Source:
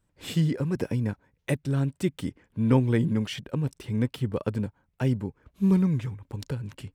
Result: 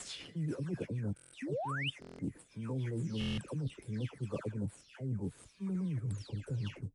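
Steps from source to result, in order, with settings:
every frequency bin delayed by itself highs early, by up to 319 ms
high-shelf EQ 6,100 Hz +8 dB
in parallel at −7 dB: sample-rate reduction 8,500 Hz, jitter 20%
on the sum: rotating-speaker cabinet horn 7 Hz, later 0.8 Hz, at 0:02.77
sound drawn into the spectrogram rise, 0:01.42–0:01.90, 240–3,200 Hz −22 dBFS
reversed playback
downward compressor 16 to 1, threshold −33 dBFS, peak gain reduction 19.5 dB
reversed playback
harmonic generator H 3 −36 dB, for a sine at −24.5 dBFS
buffer that repeats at 0:01.15/0:02.00/0:03.19, samples 1,024, times 7
MP3 48 kbit/s 32,000 Hz

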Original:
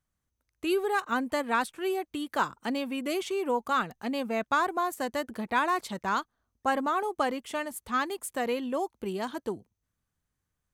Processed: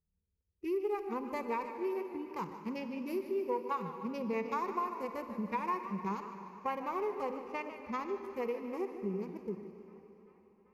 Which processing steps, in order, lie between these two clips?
adaptive Wiener filter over 41 samples
harmonic and percussive parts rebalanced percussive −14 dB
EQ curve with evenly spaced ripples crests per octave 0.82, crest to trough 15 dB
downward compressor 3 to 1, threshold −35 dBFS, peak gain reduction 12 dB
on a send: delay with a band-pass on its return 389 ms, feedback 74%, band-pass 1,300 Hz, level −23 dB
on the sum: four-comb reverb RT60 3.3 s, DRR 9 dB
feedback echo with a swinging delay time 151 ms, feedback 58%, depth 126 cents, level −12.5 dB

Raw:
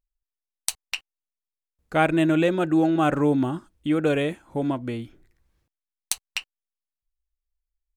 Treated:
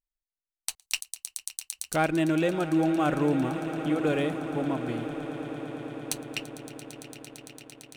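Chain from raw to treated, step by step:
echo that builds up and dies away 113 ms, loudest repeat 8, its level −17.5 dB
leveller curve on the samples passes 1
0:00.82–0:01.96: bass and treble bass +3 dB, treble +14 dB
level −8.5 dB

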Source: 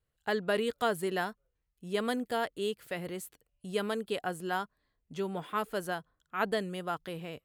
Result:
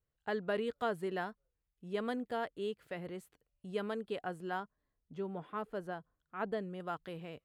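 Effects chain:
low-pass filter 2,100 Hz 6 dB per octave, from 0:04.60 1,000 Hz, from 0:06.80 3,200 Hz
level −4.5 dB

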